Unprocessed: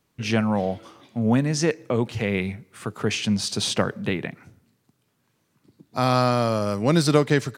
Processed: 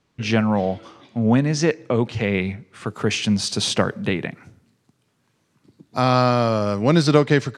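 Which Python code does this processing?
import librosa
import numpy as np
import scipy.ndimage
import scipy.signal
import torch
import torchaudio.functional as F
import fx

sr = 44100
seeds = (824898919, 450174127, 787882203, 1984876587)

y = fx.lowpass(x, sr, hz=fx.steps((0.0, 6100.0), (2.86, 9900.0), (6.01, 5700.0)), slope=12)
y = y * 10.0 ** (3.0 / 20.0)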